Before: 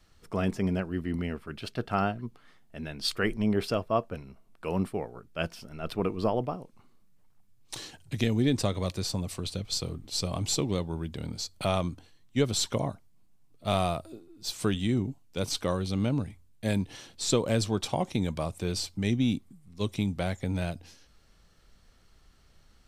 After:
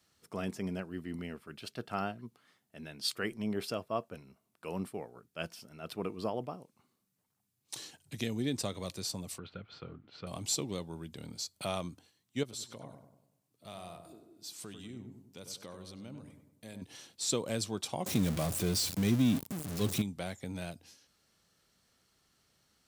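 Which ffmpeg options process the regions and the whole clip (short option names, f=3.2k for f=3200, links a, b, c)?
-filter_complex "[0:a]asettb=1/sr,asplit=3[a][b][c];[a]atrim=end=9.384[d];[b]atrim=start=9.38:end=10.27,asetpts=PTS-STARTPTS,afade=t=in:d=0.004:c=qsin,afade=t=out:st=0.886:d=0.004:c=qsin,aeval=exprs='if(lt(val(0),0),0.708*val(0),val(0))':c=same,lowpass=f=2.8k:w=0.5412,lowpass=f=2.8k:w=1.3066,equalizer=f=1.4k:t=o:w=0.24:g=14.5[e];[c]atrim=start=10.266[f];[d][e]acrossfade=d=0.004:c1=hsin:c2=qsin[g];[g][f]acrossfade=d=0.004:c1=qsin:c2=hsin,asettb=1/sr,asplit=3[h][i][j];[h]atrim=end=12.434[k];[i]atrim=start=12.43:end=16.82,asetpts=PTS-STARTPTS,afade=t=in:d=0.004:c=qsin,afade=t=out:st=4.386:d=0.004:c=qsin,acompressor=threshold=-43dB:ratio=2:attack=3.2:release=140:knee=1:detection=peak,asplit=2[l][m];[m]adelay=97,lowpass=f=1.6k:p=1,volume=-6.5dB,asplit=2[n][o];[o]adelay=97,lowpass=f=1.6k:p=1,volume=0.51,asplit=2[p][q];[q]adelay=97,lowpass=f=1.6k:p=1,volume=0.51,asplit=2[r][s];[s]adelay=97,lowpass=f=1.6k:p=1,volume=0.51,asplit=2[t][u];[u]adelay=97,lowpass=f=1.6k:p=1,volume=0.51,asplit=2[v][w];[w]adelay=97,lowpass=f=1.6k:p=1,volume=0.51[x];[l][n][p][r][t][v][x]amix=inputs=7:normalize=0,atrim=end_sample=193599[y];[j]atrim=start=16.816[z];[k][y]acrossfade=d=0.004:c1=hsin:c2=qsin[aa];[aa][z]acrossfade=d=0.004:c1=qsin:c2=hsin,asettb=1/sr,asplit=3[ab][ac][ad];[ab]atrim=end=18.064[ae];[ac]atrim=start=18.06:end=20.02,asetpts=PTS-STARTPTS,afade=t=in:d=0.004:c=qsin,afade=t=out:st=1.956:d=0.004:c=qsin,aeval=exprs='val(0)+0.5*0.0376*sgn(val(0))':c=same,lowshelf=f=310:g=8.5,bandreject=f=900:w=14[af];[ad]atrim=start=20.016[ag];[ae][af]acrossfade=d=0.004:c1=hsin:c2=qsin[ah];[ah][ag]acrossfade=d=0.004:c1=qsin:c2=hsin,highpass=120,highshelf=f=4.9k:g=9,volume=-8dB"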